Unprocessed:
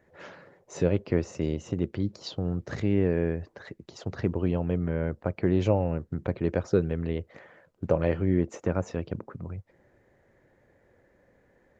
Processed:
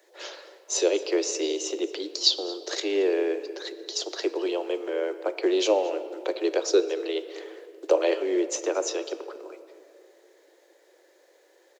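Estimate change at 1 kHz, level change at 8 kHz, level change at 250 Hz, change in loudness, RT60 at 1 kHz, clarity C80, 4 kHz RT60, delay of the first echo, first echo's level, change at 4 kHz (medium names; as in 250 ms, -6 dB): +4.0 dB, no reading, -2.5 dB, +2.0 dB, 2.3 s, 13.0 dB, 1.3 s, 225 ms, -20.5 dB, +18.0 dB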